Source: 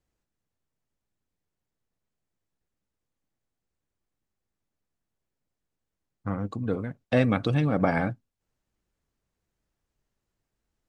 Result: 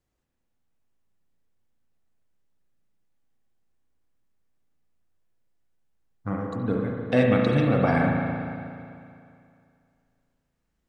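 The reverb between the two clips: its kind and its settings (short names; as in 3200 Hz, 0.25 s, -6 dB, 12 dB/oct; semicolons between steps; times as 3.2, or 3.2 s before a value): spring tank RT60 2.4 s, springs 36/56 ms, chirp 40 ms, DRR -0.5 dB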